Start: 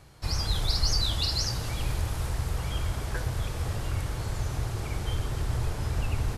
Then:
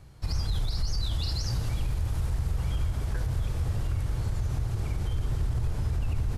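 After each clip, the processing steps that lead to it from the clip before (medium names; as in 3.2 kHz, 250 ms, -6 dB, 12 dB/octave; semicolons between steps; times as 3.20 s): bass shelf 240 Hz +10.5 dB; peak limiter -15.5 dBFS, peak gain reduction 10 dB; trim -5 dB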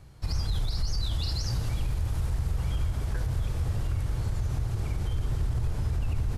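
no audible change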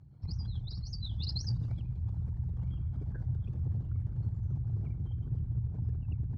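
resonances exaggerated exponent 2; band-pass 130–7700 Hz; trim +4 dB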